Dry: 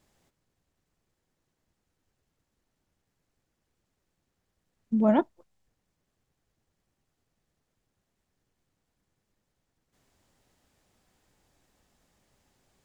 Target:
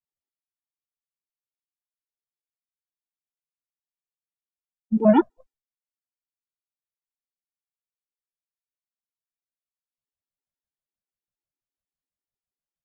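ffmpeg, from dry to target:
-af "agate=range=-33dB:threshold=-54dB:ratio=3:detection=peak,afftdn=nr=12:nf=-53,afftfilt=real='re*gt(sin(2*PI*6.1*pts/sr)*(1-2*mod(floor(b*sr/1024/250),2)),0)':imag='im*gt(sin(2*PI*6.1*pts/sr)*(1-2*mod(floor(b*sr/1024/250),2)),0)':win_size=1024:overlap=0.75,volume=7.5dB"

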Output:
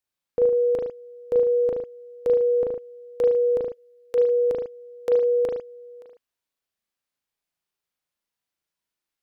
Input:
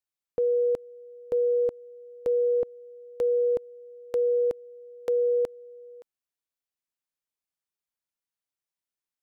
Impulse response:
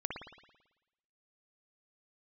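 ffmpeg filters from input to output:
-filter_complex "[0:a]asplit=3[a][b][c];[a]afade=t=out:st=3.62:d=0.02[d];[b]highpass=900,afade=t=in:st=3.62:d=0.02,afade=t=out:st=4.13:d=0.02[e];[c]afade=t=in:st=4.13:d=0.02[f];[d][e][f]amix=inputs=3:normalize=0[g];[1:a]atrim=start_sample=2205,afade=t=out:st=0.29:d=0.01,atrim=end_sample=13230,asetrate=66150,aresample=44100[h];[g][h]afir=irnorm=-1:irlink=0,volume=8.5dB"

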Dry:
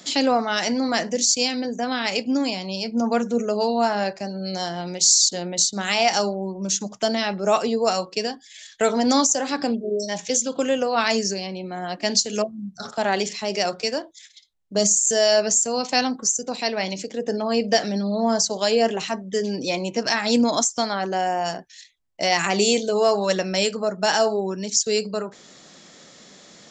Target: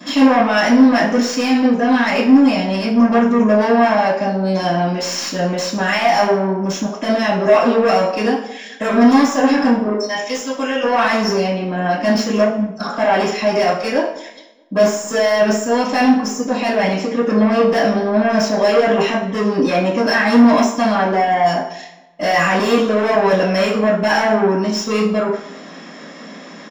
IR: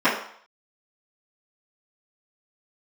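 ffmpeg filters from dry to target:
-filter_complex "[0:a]asettb=1/sr,asplit=3[a][b][c];[a]atrim=end=9.934[d];[b]atrim=start=9.93:end=10.84,asetpts=PTS-STARTPTS,afade=t=in:d=0.004:c=qsin,afade=t=out:st=0.906:d=0.004:c=qsin,highpass=f=1.4k:p=1[e];[c]atrim=start=10.836[f];[d][e]acrossfade=d=0.004:c1=hsin:c2=qsin[g];[g][f]acrossfade=d=0.004:c1=qsin:c2=hsin,asettb=1/sr,asplit=3[h][i][j];[h]atrim=end=21.254[k];[i]atrim=start=21.25:end=22.42,asetpts=PTS-STARTPTS,afade=t=in:d=0.004:c=qsin,afade=t=out:st=1.166:d=0.004:c=qsin,adynamicequalizer=threshold=0.01:dfrequency=6300:dqfactor=1.7:tfrequency=6300:tqfactor=1.7:attack=5:release=100:ratio=0.375:range=2:mode=boostabove:tftype=bell[l];[j]atrim=start=22.416[m];[k][l]acrossfade=d=0.004:c1=hsin:c2=qsin[n];[n][m]acrossfade=d=0.004:c1=qsin:c2=hsin,aeval=exprs='(tanh(17.8*val(0)+0.15)-tanh(0.15))/17.8':c=same,asplit=2[o][p];[p]adelay=210,lowpass=f=2.1k:p=1,volume=-18.5dB,asplit=2[q][r];[r]adelay=210,lowpass=f=2.1k:p=1,volume=0.36,asplit=2[s][t];[t]adelay=210,lowpass=f=2.1k:p=1,volume=0.36[u];[o][q][s][u]amix=inputs=4:normalize=0[v];[1:a]atrim=start_sample=2205[w];[v][w]afir=irnorm=-1:irlink=0,volume=-6dB"

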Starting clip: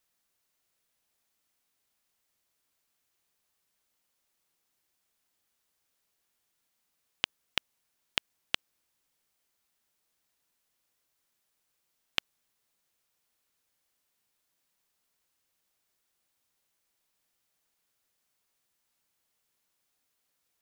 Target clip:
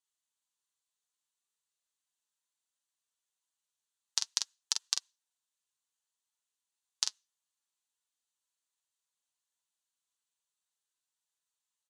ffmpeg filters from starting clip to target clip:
-af "afftdn=nr=20:nf=-64,equalizer=f=170:w=0.38:g=-10,acontrast=77,alimiter=limit=-10dB:level=0:latency=1:release=179,acontrast=43,crystalizer=i=6:c=0,flanger=delay=3.4:depth=5.8:regen=64:speed=0.36:shape=triangular,highpass=120,equalizer=f=560:t=q:w=4:g=7,equalizer=f=1.3k:t=q:w=4:g=-8,equalizer=f=3k:t=q:w=4:g=-9,lowpass=f=4.2k:w=0.5412,lowpass=f=4.2k:w=1.3066,aecho=1:1:12|65|80:0.316|0.141|0.562,asetrate=76440,aresample=44100"

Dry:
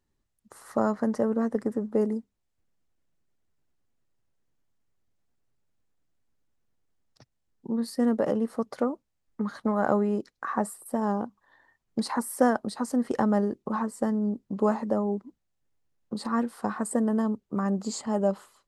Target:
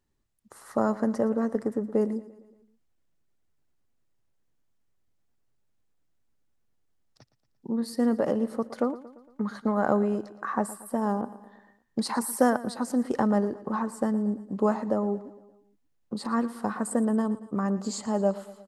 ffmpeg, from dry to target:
-filter_complex "[0:a]aecho=1:1:115|230|345|460|575:0.141|0.0777|0.0427|0.0235|0.0129,asettb=1/sr,asplit=3[a][b][c];[a]atrim=end=11.214[d];[b]atrim=start=11.21:end=12.5,asetpts=PTS-STARTPTS,afade=t=in:d=0.004:c=qsin,afade=t=out:st=1.286:d=0.004:c=qsin,adynamicequalizer=threshold=0.00891:dfrequency=2700:dqfactor=0.7:tfrequency=2700:tqfactor=0.7:attack=5:release=100:ratio=0.375:range=2:mode=boostabove:tftype=highshelf[e];[c]atrim=start=12.496[f];[d][e]acrossfade=d=0.004:c1=hsin:c2=qsin[g];[g][f]acrossfade=d=0.004:c1=qsin:c2=hsin"

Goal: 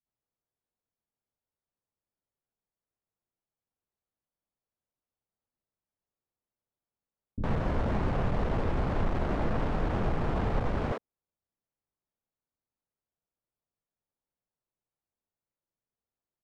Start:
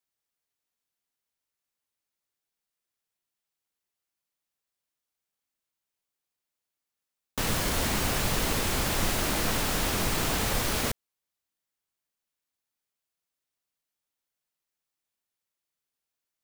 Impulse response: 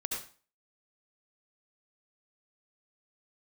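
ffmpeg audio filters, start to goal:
-filter_complex "[0:a]volume=26dB,asoftclip=hard,volume=-26dB,acrossover=split=290[a][b];[b]adelay=60[c];[a][c]amix=inputs=2:normalize=0,adynamicsmooth=sensitivity=0.5:basefreq=840,volume=5dB"

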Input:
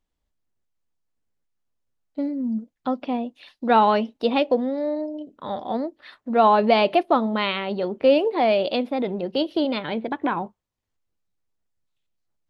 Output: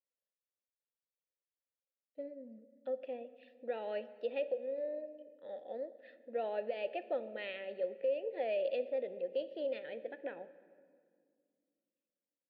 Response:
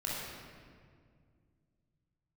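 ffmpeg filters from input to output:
-filter_complex "[0:a]asplit=3[a][b][c];[a]bandpass=f=530:t=q:w=8,volume=0dB[d];[b]bandpass=f=1.84k:t=q:w=8,volume=-6dB[e];[c]bandpass=f=2.48k:t=q:w=8,volume=-9dB[f];[d][e][f]amix=inputs=3:normalize=0,alimiter=limit=-21dB:level=0:latency=1:release=255,asplit=2[g][h];[1:a]atrim=start_sample=2205,asetrate=42336,aresample=44100[i];[h][i]afir=irnorm=-1:irlink=0,volume=-17.5dB[j];[g][j]amix=inputs=2:normalize=0,volume=-6.5dB"

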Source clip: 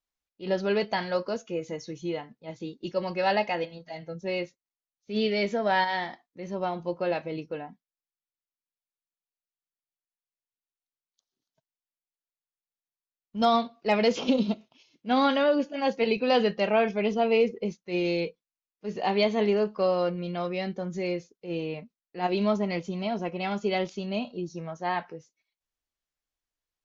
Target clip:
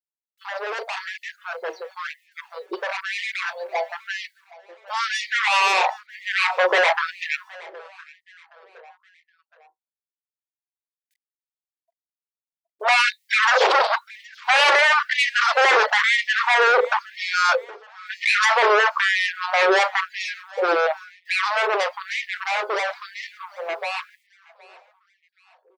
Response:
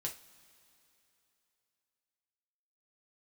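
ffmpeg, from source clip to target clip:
-filter_complex "[0:a]asplit=2[a][b];[b]adelay=38,volume=-13dB[c];[a][c]amix=inputs=2:normalize=0,bandreject=f=92.43:t=h:w=4,bandreject=f=184.86:t=h:w=4,bandreject=f=277.29:t=h:w=4,asetrate=45938,aresample=44100,firequalizer=gain_entry='entry(230,0);entry(800,10);entry(2600,-13);entry(4000,-1);entry(6500,-17)':delay=0.05:min_phase=1,alimiter=limit=-20dB:level=0:latency=1:release=12,aeval=exprs='0.0376*(abs(mod(val(0)/0.0376+3,4)-2)-1)':c=same,afftdn=nr=36:nf=-55,dynaudnorm=f=590:g=17:m=13dB,adynamicequalizer=threshold=0.00891:dfrequency=700:dqfactor=5.7:tfrequency=700:tqfactor=5.7:attack=5:release=100:ratio=0.375:range=2.5:mode=cutabove:tftype=bell,acrusher=bits=11:mix=0:aa=0.000001,asplit=2[d][e];[e]aecho=0:1:769|1538|2307:0.0794|0.0334|0.014[f];[d][f]amix=inputs=2:normalize=0,afftfilt=real='re*gte(b*sr/1024,340*pow(1800/340,0.5+0.5*sin(2*PI*1*pts/sr)))':imag='im*gte(b*sr/1024,340*pow(1800/340,0.5+0.5*sin(2*PI*1*pts/sr)))':win_size=1024:overlap=0.75,volume=6dB"

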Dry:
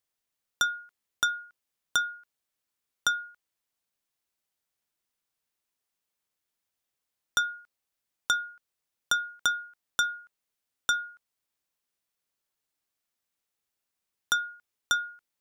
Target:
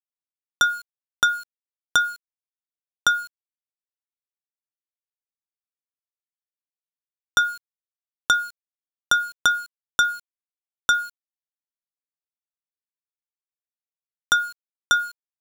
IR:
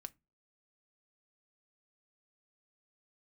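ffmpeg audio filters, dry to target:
-af "highshelf=f=2.4k:g=-5,aeval=exprs='val(0)*gte(abs(val(0)),0.00531)':c=same,volume=9dB"

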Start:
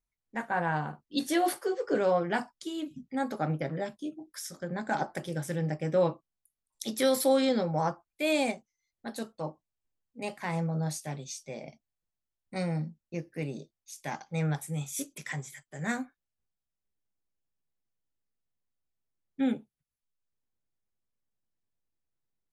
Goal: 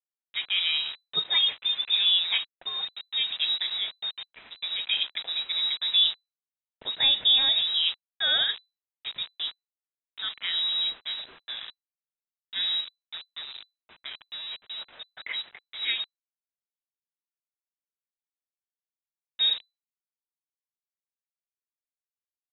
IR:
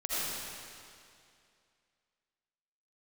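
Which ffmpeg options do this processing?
-filter_complex "[0:a]asettb=1/sr,asplit=3[a][b][c];[a]atrim=end=12.804[d];[b]atrim=start=12.8:end=15.2,asetpts=PTS-STARTPTS,afade=t=in:d=0.004:c=qsin,afade=t=out:st=2.396:d=0.004:c=qsin,acompressor=threshold=-39dB:ratio=8[e];[c]atrim=start=15.196[f];[d][e]acrossfade=d=0.004:c1=hsin:c2=qsin[g];[g][f]acrossfade=d=0.004:c1=qsin:c2=hsin,acrusher=bits=6:mix=0:aa=0.000001,lowpass=f=3.4k:t=q:w=0.5098,lowpass=f=3.4k:t=q:w=0.6013,lowpass=f=3.4k:t=q:w=0.9,lowpass=f=3.4k:t=q:w=2.563,afreqshift=-4000,volume=3dB"

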